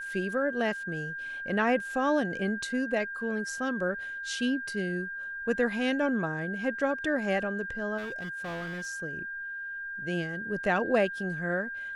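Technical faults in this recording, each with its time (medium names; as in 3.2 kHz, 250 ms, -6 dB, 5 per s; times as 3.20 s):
whine 1.6 kHz -35 dBFS
7.97–8.87 s: clipped -33 dBFS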